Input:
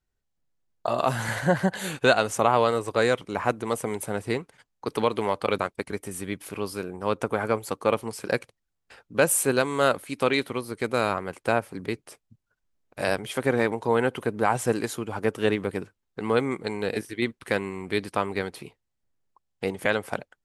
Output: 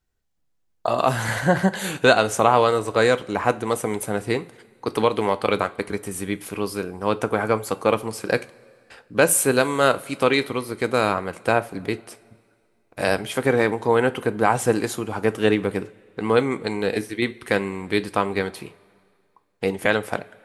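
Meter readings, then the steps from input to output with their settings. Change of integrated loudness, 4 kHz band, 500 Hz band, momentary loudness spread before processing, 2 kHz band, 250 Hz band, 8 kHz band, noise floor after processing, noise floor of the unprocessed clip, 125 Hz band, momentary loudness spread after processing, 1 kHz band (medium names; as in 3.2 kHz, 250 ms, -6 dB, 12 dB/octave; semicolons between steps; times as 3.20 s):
+4.0 dB, +4.5 dB, +4.0 dB, 11 LU, +4.5 dB, +4.5 dB, +4.5 dB, -67 dBFS, -80 dBFS, +4.0 dB, 11 LU, +4.5 dB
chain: two-slope reverb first 0.27 s, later 2.2 s, from -20 dB, DRR 12 dB; trim +4 dB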